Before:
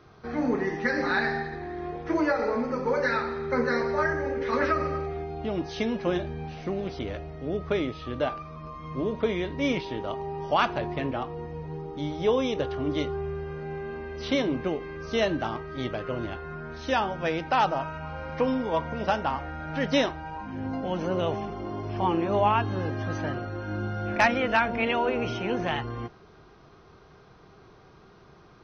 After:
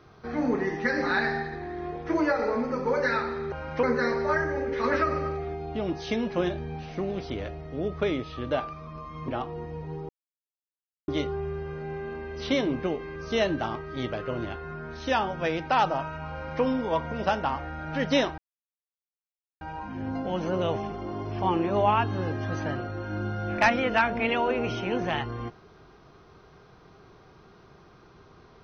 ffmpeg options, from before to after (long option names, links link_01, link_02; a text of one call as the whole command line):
ffmpeg -i in.wav -filter_complex "[0:a]asplit=7[link_01][link_02][link_03][link_04][link_05][link_06][link_07];[link_01]atrim=end=3.522[link_08];[link_02]atrim=start=18.128:end=18.442[link_09];[link_03]atrim=start=3.518:end=8.972[link_10];[link_04]atrim=start=11.088:end=11.9,asetpts=PTS-STARTPTS,afade=type=out:start_time=0.808:duration=0.004:curve=hsin[link_11];[link_05]atrim=start=11.9:end=12.89,asetpts=PTS-STARTPTS,volume=0[link_12];[link_06]atrim=start=12.89:end=20.19,asetpts=PTS-STARTPTS,afade=type=in:duration=0.004:curve=hsin,afade=type=out:start_time=7.296:duration=0.004:curve=hsin,apad=pad_dur=1.23[link_13];[link_07]atrim=start=20.19,asetpts=PTS-STARTPTS,afade=type=in:duration=0.004:curve=hsin[link_14];[link_08][link_09]acrossfade=duration=0.004:curve1=hsin:curve2=hsin[link_15];[link_15][link_10]acrossfade=duration=0.004:curve1=hsin:curve2=hsin[link_16];[link_11][link_12][link_13][link_14]concat=n=4:v=0:a=1[link_17];[link_16][link_17]acrossfade=duration=0.004:curve1=hsin:curve2=hsin" out.wav